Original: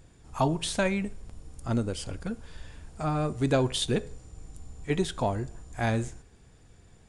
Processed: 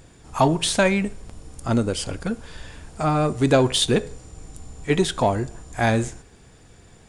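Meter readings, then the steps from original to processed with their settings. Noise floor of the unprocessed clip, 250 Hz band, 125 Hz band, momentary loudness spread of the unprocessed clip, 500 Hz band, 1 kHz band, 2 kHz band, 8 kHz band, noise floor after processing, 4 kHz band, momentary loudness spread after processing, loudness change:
-57 dBFS, +7.0 dB, +5.5 dB, 22 LU, +8.0 dB, +8.5 dB, +8.5 dB, +9.0 dB, -50 dBFS, +9.0 dB, 17 LU, +7.5 dB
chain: bass shelf 140 Hz -6.5 dB; in parallel at -12 dB: hard clipper -27.5 dBFS, distortion -8 dB; on the sum: trim +7.5 dB

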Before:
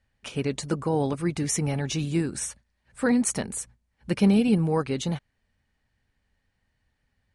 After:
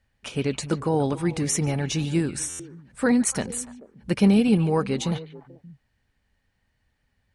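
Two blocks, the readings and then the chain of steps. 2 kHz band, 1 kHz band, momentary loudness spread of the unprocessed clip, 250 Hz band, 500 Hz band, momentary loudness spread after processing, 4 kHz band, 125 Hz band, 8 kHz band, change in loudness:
+2.5 dB, +2.0 dB, 12 LU, +2.0 dB, +2.0 dB, 14 LU, +2.5 dB, +2.0 dB, +2.0 dB, +2.0 dB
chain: repeats whose band climbs or falls 145 ms, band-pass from 2.9 kHz, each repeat -1.4 oct, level -9.5 dB; buffer glitch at 2.49 s, samples 512, times 8; trim +2 dB

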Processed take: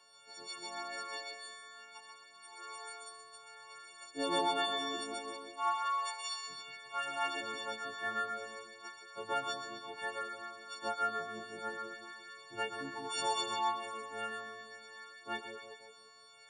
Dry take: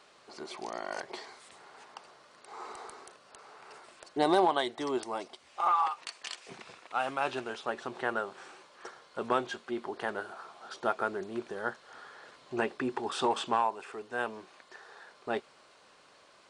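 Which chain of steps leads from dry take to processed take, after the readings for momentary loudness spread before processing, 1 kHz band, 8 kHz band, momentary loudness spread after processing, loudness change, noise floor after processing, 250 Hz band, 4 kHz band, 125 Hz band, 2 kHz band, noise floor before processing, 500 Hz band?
23 LU, -4.5 dB, +3.0 dB, 17 LU, -5.0 dB, -58 dBFS, -9.5 dB, +2.0 dB, -9.5 dB, -2.5 dB, -60 dBFS, -8.0 dB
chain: partials quantised in pitch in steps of 4 st; two-band feedback delay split 700 Hz, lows 175 ms, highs 129 ms, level -5 dB; chorus 0.31 Hz, delay 15.5 ms, depth 3.3 ms; trim -7 dB

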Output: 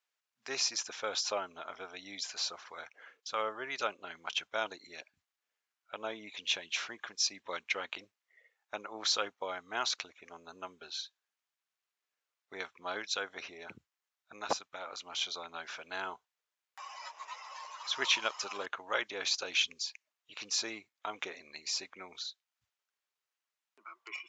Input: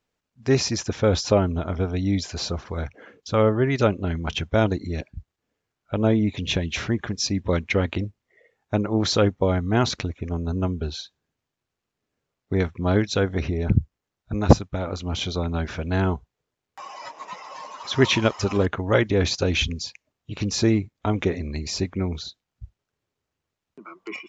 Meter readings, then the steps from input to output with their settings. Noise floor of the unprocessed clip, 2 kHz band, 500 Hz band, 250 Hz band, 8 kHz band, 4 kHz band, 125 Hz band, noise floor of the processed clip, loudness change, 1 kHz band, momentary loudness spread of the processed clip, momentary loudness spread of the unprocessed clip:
-84 dBFS, -7.0 dB, -18.5 dB, -29.0 dB, no reading, -4.5 dB, under -40 dB, under -85 dBFS, -12.5 dB, -9.0 dB, 16 LU, 15 LU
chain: high-pass 1.1 kHz 12 dB/octave; dynamic bell 1.9 kHz, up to -5 dB, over -48 dBFS, Q 3.8; trim -4.5 dB

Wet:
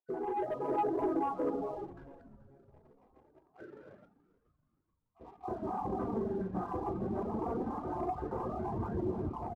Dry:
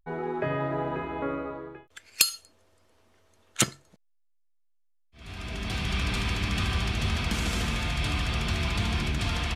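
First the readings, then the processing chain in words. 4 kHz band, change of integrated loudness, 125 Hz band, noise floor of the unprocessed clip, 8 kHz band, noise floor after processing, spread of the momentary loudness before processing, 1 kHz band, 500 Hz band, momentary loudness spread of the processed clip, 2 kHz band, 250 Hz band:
under -35 dB, -7.5 dB, -13.0 dB, -66 dBFS, under -40 dB, -79 dBFS, 15 LU, -0.5 dB, -0.5 dB, 17 LU, -23.5 dB, -2.5 dB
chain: random holes in the spectrogram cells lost 64%; high-pass 240 Hz 12 dB/octave; gated-style reverb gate 450 ms falling, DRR -5.5 dB; flange 0.22 Hz, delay 0.2 ms, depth 5.9 ms, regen +49%; compression 10:1, threshold -35 dBFS, peak gain reduction 14.5 dB; steep low-pass 1 kHz 36 dB/octave; reverb removal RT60 0.78 s; waveshaping leveller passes 1; comb 2.5 ms, depth 30%; level rider gain up to 6.5 dB; on a send: frequency-shifting echo 430 ms, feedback 45%, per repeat -140 Hz, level -18 dB

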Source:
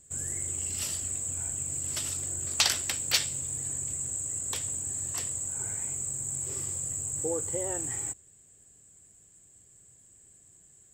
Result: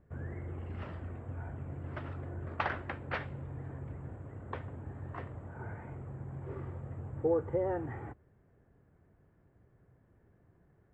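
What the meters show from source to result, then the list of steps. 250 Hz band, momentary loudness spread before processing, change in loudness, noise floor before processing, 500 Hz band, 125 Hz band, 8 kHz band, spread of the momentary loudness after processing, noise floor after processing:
+3.5 dB, 5 LU, -10.0 dB, -59 dBFS, +3.5 dB, +3.5 dB, under -40 dB, 11 LU, -68 dBFS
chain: low-pass 1.6 kHz 24 dB/octave; trim +3.5 dB

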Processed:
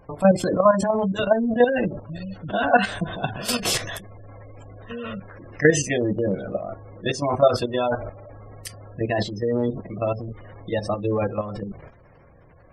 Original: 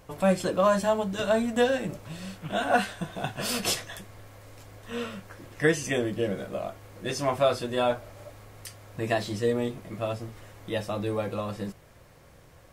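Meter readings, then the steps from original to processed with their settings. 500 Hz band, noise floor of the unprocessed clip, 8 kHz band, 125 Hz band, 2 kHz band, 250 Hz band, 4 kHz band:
+5.0 dB, -54 dBFS, +5.0 dB, +6.0 dB, +4.5 dB, +5.5 dB, +3.0 dB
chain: spectral gate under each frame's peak -20 dB strong; transient shaper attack +1 dB, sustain +6 dB; level held to a coarse grid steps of 10 dB; trim +8 dB

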